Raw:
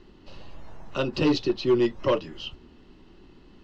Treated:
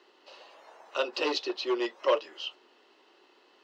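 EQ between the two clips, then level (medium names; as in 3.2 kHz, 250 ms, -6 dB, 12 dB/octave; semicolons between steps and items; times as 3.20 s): high-pass 460 Hz 24 dB/octave; 0.0 dB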